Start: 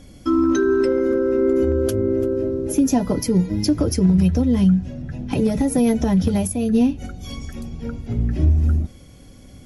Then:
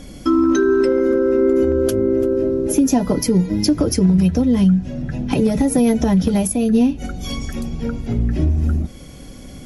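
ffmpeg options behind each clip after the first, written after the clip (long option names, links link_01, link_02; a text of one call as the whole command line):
ffmpeg -i in.wav -af "equalizer=frequency=91:width=3.7:gain=-12,acompressor=threshold=-31dB:ratio=1.5,volume=8.5dB" out.wav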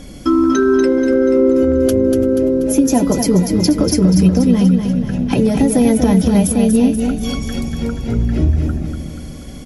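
ffmpeg -i in.wav -af "aecho=1:1:241|482|723|964|1205|1446:0.501|0.256|0.13|0.0665|0.0339|0.0173,volume=2dB" out.wav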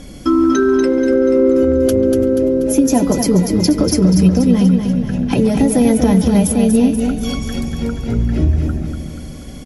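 ffmpeg -i in.wav -filter_complex "[0:a]asplit=2[link_01][link_02];[link_02]adelay=140,highpass=300,lowpass=3400,asoftclip=type=hard:threshold=-10dB,volume=-14dB[link_03];[link_01][link_03]amix=inputs=2:normalize=0,aresample=32000,aresample=44100" out.wav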